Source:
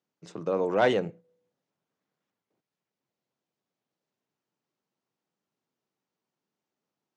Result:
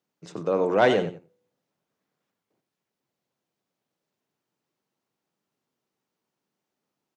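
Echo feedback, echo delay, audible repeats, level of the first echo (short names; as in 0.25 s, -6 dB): 19%, 92 ms, 2, -11.5 dB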